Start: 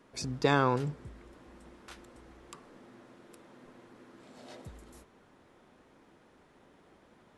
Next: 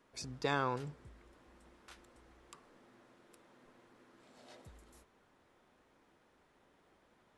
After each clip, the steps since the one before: bell 200 Hz -5 dB 2.7 oct; gain -6 dB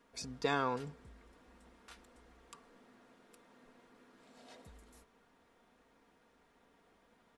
comb 4.3 ms, depth 43%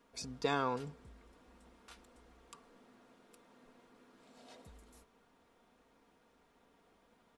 bell 1800 Hz -3.5 dB 0.49 oct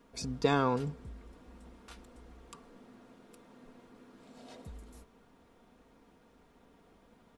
low shelf 370 Hz +8.5 dB; gain +3 dB

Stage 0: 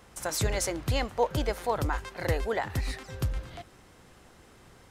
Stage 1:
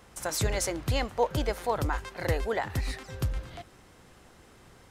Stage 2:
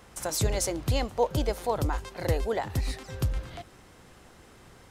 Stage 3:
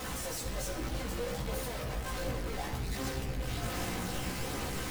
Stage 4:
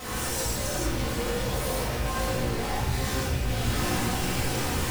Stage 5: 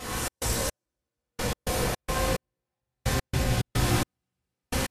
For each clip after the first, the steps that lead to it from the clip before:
nothing audible
dynamic EQ 1700 Hz, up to -7 dB, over -47 dBFS, Q 0.98; gain +2 dB
infinite clipping; shoebox room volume 2300 m³, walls mixed, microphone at 2 m; chorus voices 2, 0.65 Hz, delay 16 ms, depth 1.2 ms; gain -7.5 dB
non-linear reverb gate 0.22 s flat, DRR -8 dB
regenerating reverse delay 0.123 s, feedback 82%, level -6.5 dB; step gate "xx.xx.....x." 108 bpm -60 dB; Vorbis 64 kbps 32000 Hz

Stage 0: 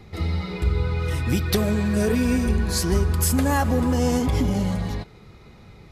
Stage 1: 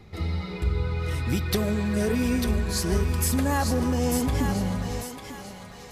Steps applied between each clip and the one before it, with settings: thinning echo 0.896 s, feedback 38%, high-pass 730 Hz, level -5 dB; gain -3.5 dB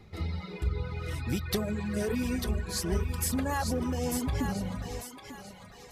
reverb removal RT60 0.84 s; gain -4 dB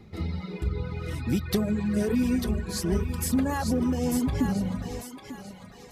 bell 230 Hz +7.5 dB 1.6 oct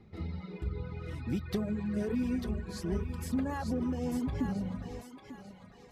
high shelf 5500 Hz -12 dB; gain -7 dB

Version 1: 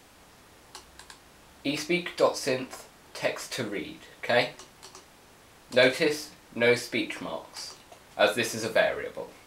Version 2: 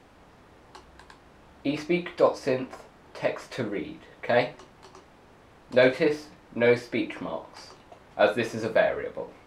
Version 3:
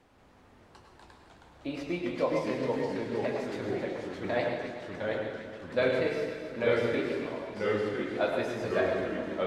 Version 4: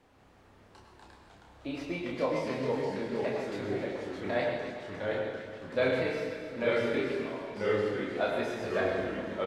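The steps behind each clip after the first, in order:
LPF 1300 Hz 6 dB/oct; gain +3 dB
echo with dull and thin repeats by turns 0.132 s, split 1100 Hz, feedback 72%, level -7 dB; on a send at -4 dB: reverb RT60 0.60 s, pre-delay 90 ms; on the sum: echoes that change speed 0.183 s, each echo -2 st, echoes 3; gain -8.5 dB
doubler 30 ms -3.5 dB; gain -2 dB

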